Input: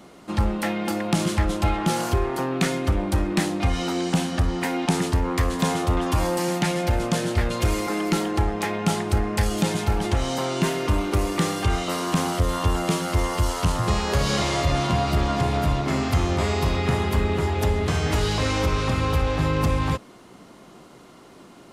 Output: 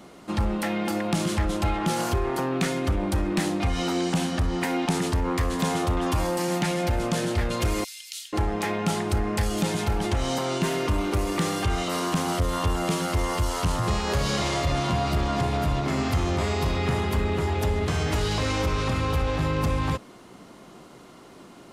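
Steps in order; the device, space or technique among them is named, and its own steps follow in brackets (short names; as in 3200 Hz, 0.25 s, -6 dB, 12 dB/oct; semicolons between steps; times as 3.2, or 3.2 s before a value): clipper into limiter (hard clip -14 dBFS, distortion -26 dB; limiter -17 dBFS, peak gain reduction 3 dB); 7.84–8.33 inverse Chebyshev high-pass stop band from 710 Hz, stop band 70 dB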